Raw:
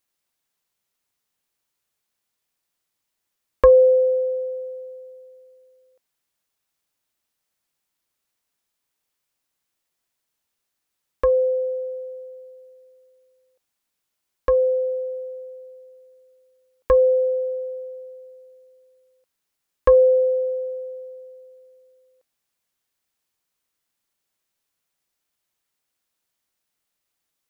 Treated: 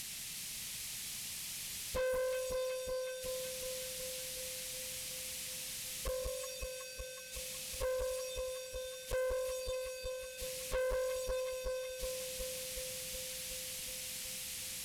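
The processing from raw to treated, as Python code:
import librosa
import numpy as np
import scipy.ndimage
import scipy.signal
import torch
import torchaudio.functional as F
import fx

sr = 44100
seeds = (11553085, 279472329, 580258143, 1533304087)

p1 = fx.delta_mod(x, sr, bps=64000, step_db=-35.5)
p2 = fx.band_shelf(p1, sr, hz=670.0, db=-15.0, octaves=2.8)
p3 = fx.stretch_vocoder_free(p2, sr, factor=0.54)
p4 = p3 + fx.echo_alternate(p3, sr, ms=185, hz=990.0, feedback_pct=83, wet_db=-5.0, dry=0)
p5 = fx.tube_stage(p4, sr, drive_db=37.0, bias=0.4)
y = p5 * 10.0 ** (4.0 / 20.0)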